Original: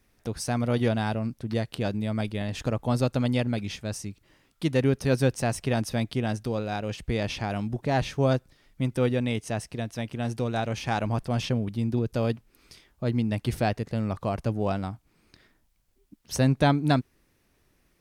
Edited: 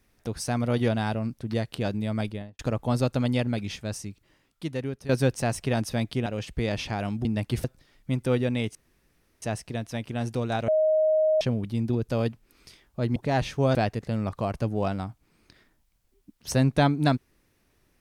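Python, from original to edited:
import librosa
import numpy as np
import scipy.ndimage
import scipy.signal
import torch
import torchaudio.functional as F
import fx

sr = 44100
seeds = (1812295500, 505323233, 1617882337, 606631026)

y = fx.studio_fade_out(x, sr, start_s=2.23, length_s=0.36)
y = fx.edit(y, sr, fx.fade_out_to(start_s=3.88, length_s=1.21, floor_db=-13.5),
    fx.cut(start_s=6.26, length_s=0.51),
    fx.swap(start_s=7.76, length_s=0.59, other_s=13.2, other_length_s=0.39),
    fx.insert_room_tone(at_s=9.46, length_s=0.67),
    fx.bleep(start_s=10.72, length_s=0.73, hz=625.0, db=-18.5), tone=tone)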